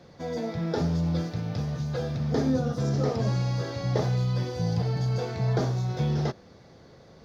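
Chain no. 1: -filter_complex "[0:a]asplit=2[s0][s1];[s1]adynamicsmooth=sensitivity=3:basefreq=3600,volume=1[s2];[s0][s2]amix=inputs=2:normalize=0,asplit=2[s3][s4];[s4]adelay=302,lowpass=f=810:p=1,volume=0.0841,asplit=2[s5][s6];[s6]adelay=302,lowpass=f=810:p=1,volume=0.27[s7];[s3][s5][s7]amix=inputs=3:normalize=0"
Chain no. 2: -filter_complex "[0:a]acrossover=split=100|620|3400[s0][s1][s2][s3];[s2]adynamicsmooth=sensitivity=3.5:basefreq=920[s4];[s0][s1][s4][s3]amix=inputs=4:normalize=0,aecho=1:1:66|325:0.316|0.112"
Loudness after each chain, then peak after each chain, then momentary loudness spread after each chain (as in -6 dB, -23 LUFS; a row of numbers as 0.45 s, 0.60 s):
-22.0 LUFS, -27.5 LUFS; -7.0 dBFS, -11.0 dBFS; 5 LU, 6 LU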